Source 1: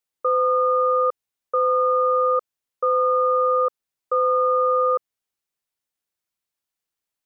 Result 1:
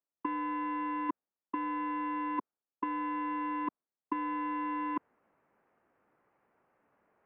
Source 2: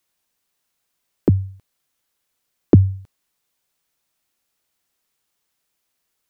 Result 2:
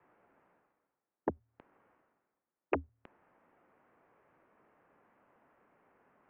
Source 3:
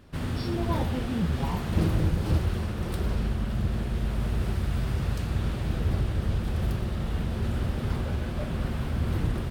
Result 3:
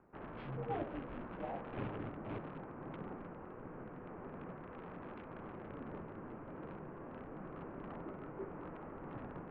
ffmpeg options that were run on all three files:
-filter_complex "[0:a]aeval=exprs='0.891*(cos(1*acos(clip(val(0)/0.891,-1,1)))-cos(1*PI/2))+0.02*(cos(4*acos(clip(val(0)/0.891,-1,1)))-cos(4*PI/2))+0.0562*(cos(7*acos(clip(val(0)/0.891,-1,1)))-cos(7*PI/2))':c=same,afftfilt=real='re*lt(hypot(re,im),0.631)':imag='im*lt(hypot(re,im),0.631)':win_size=1024:overlap=0.75,areverse,acompressor=mode=upward:threshold=-34dB:ratio=2.5,areverse,aemphasis=mode=reproduction:type=bsi,acrossover=split=1900[a][b];[b]acrusher=bits=7:mix=0:aa=0.000001[c];[a][c]amix=inputs=2:normalize=0,highpass=f=430:t=q:w=0.5412,highpass=f=430:t=q:w=1.307,lowpass=f=3.1k:t=q:w=0.5176,lowpass=f=3.1k:t=q:w=0.7071,lowpass=f=3.1k:t=q:w=1.932,afreqshift=-210,volume=-1.5dB"

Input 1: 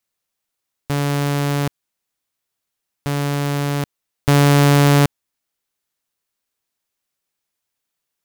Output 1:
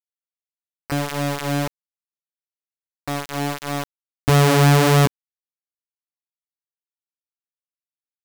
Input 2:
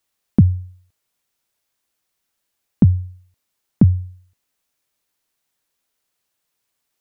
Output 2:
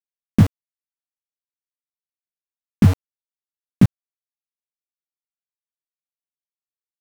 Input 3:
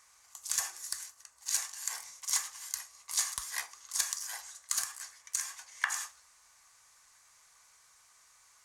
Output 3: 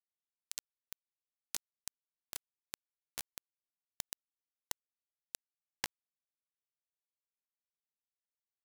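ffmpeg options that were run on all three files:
-af "flanger=delay=15.5:depth=4.3:speed=1.6,aeval=exprs='val(0)*gte(abs(val(0)),0.1)':c=same,volume=2.5dB"

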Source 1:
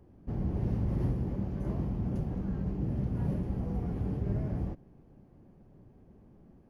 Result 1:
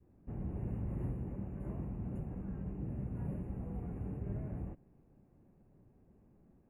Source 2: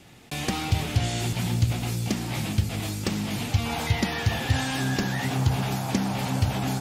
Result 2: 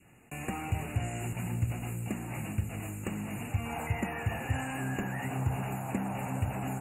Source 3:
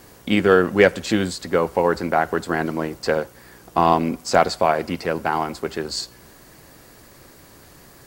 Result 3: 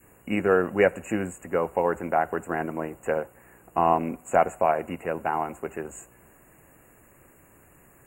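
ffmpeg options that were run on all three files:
-af "adynamicequalizer=threshold=0.0224:dfrequency=700:dqfactor=1.3:tfrequency=700:tqfactor=1.3:attack=5:release=100:ratio=0.375:range=2.5:mode=boostabove:tftype=bell,afftfilt=real='re*(1-between(b*sr/4096,2900,6700))':imag='im*(1-between(b*sr/4096,2900,6700))':win_size=4096:overlap=0.75,volume=-8dB"

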